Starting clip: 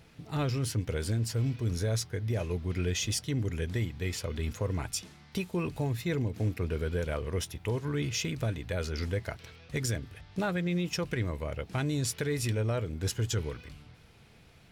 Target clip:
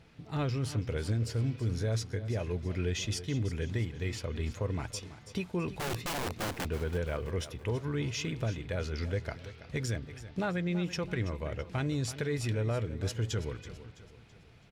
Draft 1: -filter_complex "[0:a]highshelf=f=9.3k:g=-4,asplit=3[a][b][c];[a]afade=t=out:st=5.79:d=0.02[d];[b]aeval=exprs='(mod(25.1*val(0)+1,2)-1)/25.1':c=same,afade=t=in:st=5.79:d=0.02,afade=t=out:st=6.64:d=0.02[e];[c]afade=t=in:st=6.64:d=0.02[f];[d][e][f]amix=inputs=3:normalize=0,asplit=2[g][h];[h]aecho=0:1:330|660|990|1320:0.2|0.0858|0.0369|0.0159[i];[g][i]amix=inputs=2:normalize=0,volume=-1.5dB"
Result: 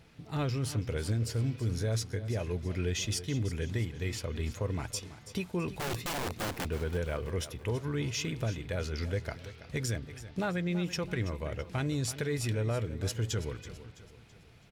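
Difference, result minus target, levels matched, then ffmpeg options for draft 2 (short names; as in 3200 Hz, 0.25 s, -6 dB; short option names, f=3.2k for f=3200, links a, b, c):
8000 Hz band +3.0 dB
-filter_complex "[0:a]highshelf=f=9.3k:g=-15,asplit=3[a][b][c];[a]afade=t=out:st=5.79:d=0.02[d];[b]aeval=exprs='(mod(25.1*val(0)+1,2)-1)/25.1':c=same,afade=t=in:st=5.79:d=0.02,afade=t=out:st=6.64:d=0.02[e];[c]afade=t=in:st=6.64:d=0.02[f];[d][e][f]amix=inputs=3:normalize=0,asplit=2[g][h];[h]aecho=0:1:330|660|990|1320:0.2|0.0858|0.0369|0.0159[i];[g][i]amix=inputs=2:normalize=0,volume=-1.5dB"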